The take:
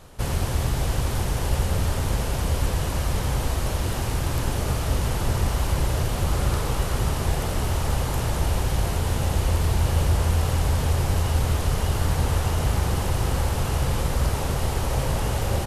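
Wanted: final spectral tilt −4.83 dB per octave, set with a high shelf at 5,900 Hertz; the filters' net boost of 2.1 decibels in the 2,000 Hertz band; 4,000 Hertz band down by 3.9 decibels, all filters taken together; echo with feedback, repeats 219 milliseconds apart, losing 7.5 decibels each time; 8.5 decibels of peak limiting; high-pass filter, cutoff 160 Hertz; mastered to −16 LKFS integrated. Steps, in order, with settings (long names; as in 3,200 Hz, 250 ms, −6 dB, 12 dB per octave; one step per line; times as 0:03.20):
high-pass filter 160 Hz
parametric band 2,000 Hz +4.5 dB
parametric band 4,000 Hz −4.5 dB
high-shelf EQ 5,900 Hz −7.5 dB
brickwall limiter −24.5 dBFS
repeating echo 219 ms, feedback 42%, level −7.5 dB
level +16.5 dB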